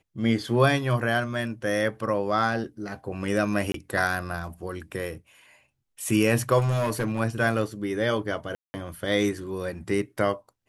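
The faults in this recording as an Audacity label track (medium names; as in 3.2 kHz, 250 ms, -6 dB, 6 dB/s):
3.720000	3.740000	dropout 23 ms
6.580000	7.210000	clipped -21 dBFS
8.550000	8.740000	dropout 190 ms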